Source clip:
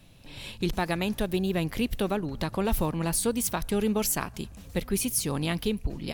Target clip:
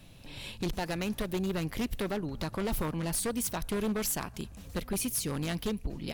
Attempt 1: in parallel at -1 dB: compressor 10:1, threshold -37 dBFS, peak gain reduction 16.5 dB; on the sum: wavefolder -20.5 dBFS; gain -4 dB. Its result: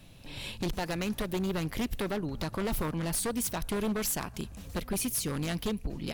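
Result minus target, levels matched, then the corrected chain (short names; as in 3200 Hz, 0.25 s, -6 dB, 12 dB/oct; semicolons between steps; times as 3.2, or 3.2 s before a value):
compressor: peak gain reduction -9 dB
in parallel at -1 dB: compressor 10:1, threshold -47 dBFS, peak gain reduction 25.5 dB; on the sum: wavefolder -20.5 dBFS; gain -4 dB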